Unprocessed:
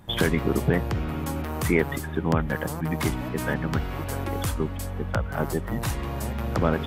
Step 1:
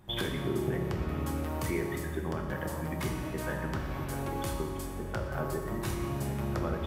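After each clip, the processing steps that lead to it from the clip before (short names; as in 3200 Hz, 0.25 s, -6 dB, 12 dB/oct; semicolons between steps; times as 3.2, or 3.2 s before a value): compressor, threshold -23 dBFS, peak gain reduction 8 dB; reverb RT60 1.8 s, pre-delay 3 ms, DRR 1 dB; gain -7.5 dB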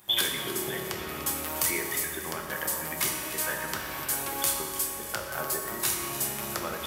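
tilt +4.5 dB/oct; split-band echo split 1100 Hz, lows 0.192 s, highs 0.296 s, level -13 dB; gain +3 dB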